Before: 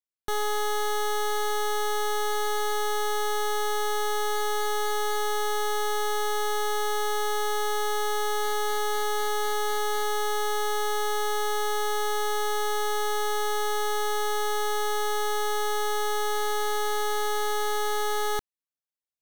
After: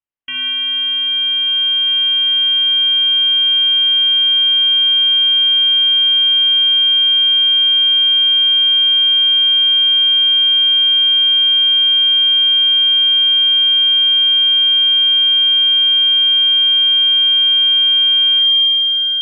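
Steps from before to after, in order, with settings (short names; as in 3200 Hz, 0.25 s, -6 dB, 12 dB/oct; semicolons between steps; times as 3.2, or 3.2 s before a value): Schroeder reverb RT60 1.7 s, combs from 30 ms, DRR 3.5 dB; limiter -19.5 dBFS, peak gain reduction 8.5 dB; on a send: multi-head echo 0.397 s, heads all three, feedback 61%, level -17 dB; on the sum: inverted band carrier 3200 Hz; gain +2 dB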